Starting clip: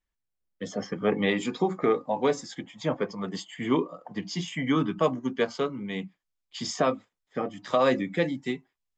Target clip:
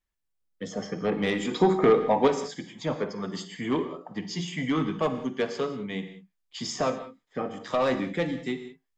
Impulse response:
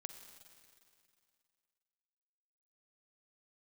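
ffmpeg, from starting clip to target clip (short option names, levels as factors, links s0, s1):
-filter_complex "[0:a]asoftclip=type=tanh:threshold=0.133,asettb=1/sr,asplit=3[s0][s1][s2];[s0]atrim=end=1.514[s3];[s1]atrim=start=1.51:end=2.28,asetpts=PTS-STARTPTS,afade=t=in:d=0.004:c=qsin,afade=t=out:st=0.766:d=0.004:c=qsin,acontrast=70[s4];[s2]atrim=start=2.276[s5];[s3][s4]acrossfade=d=0.004:c1=hsin:c2=qsin[s6];[s6][s5]acrossfade=d=0.004:c1=qsin:c2=hsin[s7];[1:a]atrim=start_sample=2205,afade=t=out:st=0.25:d=0.01,atrim=end_sample=11466[s8];[s7][s8]afir=irnorm=-1:irlink=0,volume=1.68"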